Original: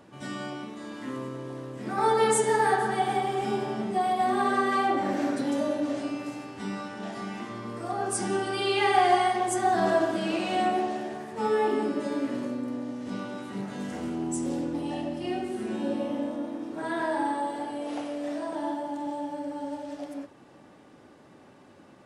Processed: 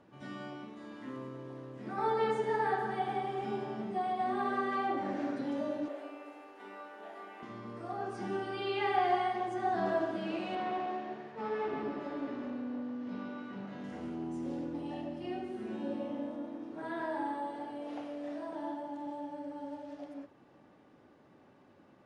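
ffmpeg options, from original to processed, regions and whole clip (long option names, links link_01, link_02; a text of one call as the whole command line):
ffmpeg -i in.wav -filter_complex "[0:a]asettb=1/sr,asplit=3[link_01][link_02][link_03];[link_01]atrim=end=5.884[link_04];[link_02]atrim=start=5.88:end=7.43,asetpts=PTS-STARTPTS,afade=type=in:duration=0.004:curve=qsin,afade=type=out:start_time=1.546:duration=0.004:curve=qsin,highpass=frequency=370:width=0.5412,highpass=frequency=370:width=1.3066,equalizer=frequency=5600:width_type=o:width=1:gain=-13,acrusher=bits=8:mix=0:aa=0.5[link_05];[link_03]atrim=start=7.426[link_06];[link_04][link_05]acrossfade=duration=0.004:curve1=hsin:curve2=qsin[link_07];[link_07][link_06]acrossfade=duration=0.004:curve1=qsin:curve2=hsin,asettb=1/sr,asplit=3[link_08][link_09][link_10];[link_08]atrim=end=10.554[link_11];[link_09]atrim=start=10.55:end=13.84,asetpts=PTS-STARTPTS,afade=type=in:duration=0.004:curve=qsin,afade=type=out:start_time=3.286:duration=0.004:curve=qsin,aeval=exprs='clip(val(0),-1,0.0282)':channel_layout=same,highpass=130,lowpass=4800,aecho=1:1:142|284|426|568|710|852:0.447|0.237|0.125|0.0665|0.0352|0.0187,atrim=end_sample=145089[link_12];[link_10]atrim=start=13.836[link_13];[link_11][link_12]acrossfade=duration=0.004:curve1=hsin:curve2=qsin[link_14];[link_14][link_13]acrossfade=duration=0.004:curve1=qsin:curve2=hsin,bandreject=frequency=7800:width=12,acrossover=split=5200[link_15][link_16];[link_16]acompressor=threshold=-53dB:ratio=4:attack=1:release=60[link_17];[link_15][link_17]amix=inputs=2:normalize=0,aemphasis=mode=reproduction:type=50fm,volume=-8dB" out.wav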